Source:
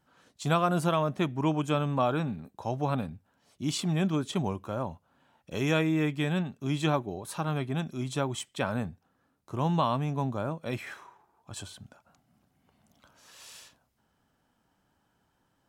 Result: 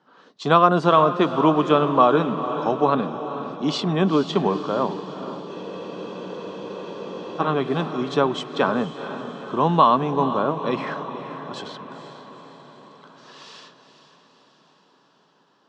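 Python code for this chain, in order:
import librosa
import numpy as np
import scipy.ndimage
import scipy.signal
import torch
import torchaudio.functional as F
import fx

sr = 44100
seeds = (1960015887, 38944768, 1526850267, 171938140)

y = fx.cabinet(x, sr, low_hz=180.0, low_slope=24, high_hz=4900.0, hz=(430.0, 1100.0, 2300.0), db=(7, 7, -6))
y = fx.echo_diffused(y, sr, ms=471, feedback_pct=60, wet_db=-11)
y = fx.spec_freeze(y, sr, seeds[0], at_s=5.5, hold_s=1.89)
y = F.gain(torch.from_numpy(y), 8.5).numpy()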